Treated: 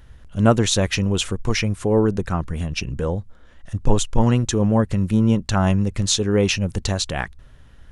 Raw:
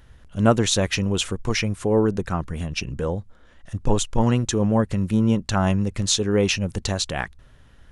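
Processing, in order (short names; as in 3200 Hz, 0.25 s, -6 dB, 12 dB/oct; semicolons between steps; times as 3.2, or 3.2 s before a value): low shelf 110 Hz +4.5 dB; gain +1 dB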